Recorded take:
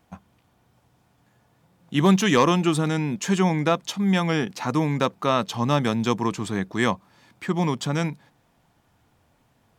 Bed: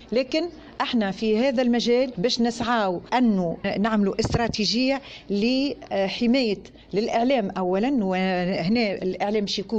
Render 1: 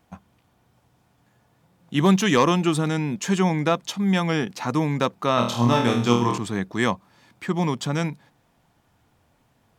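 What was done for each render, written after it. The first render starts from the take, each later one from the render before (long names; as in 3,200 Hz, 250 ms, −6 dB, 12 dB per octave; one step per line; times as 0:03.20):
0:05.35–0:06.38: flutter between parallel walls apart 4.3 metres, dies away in 0.49 s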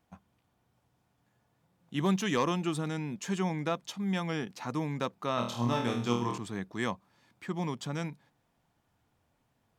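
level −10.5 dB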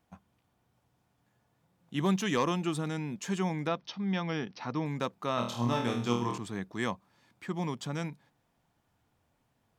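0:03.67–0:04.86: Butterworth low-pass 5,900 Hz 96 dB per octave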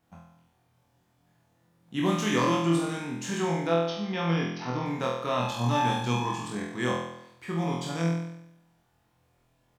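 double-tracking delay 42 ms −10.5 dB
on a send: flutter between parallel walls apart 4.1 metres, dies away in 0.8 s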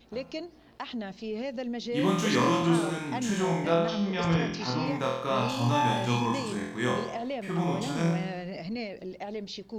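mix in bed −13 dB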